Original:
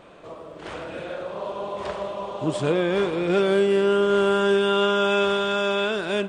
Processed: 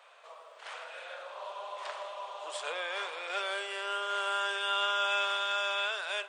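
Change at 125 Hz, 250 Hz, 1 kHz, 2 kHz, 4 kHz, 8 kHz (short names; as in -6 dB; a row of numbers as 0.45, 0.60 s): under -40 dB, -33.0 dB, -6.0 dB, -4.5 dB, -4.0 dB, n/a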